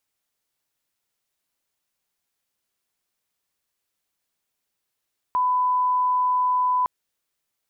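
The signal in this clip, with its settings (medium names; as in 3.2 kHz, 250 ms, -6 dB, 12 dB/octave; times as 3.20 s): line-up tone -18 dBFS 1.51 s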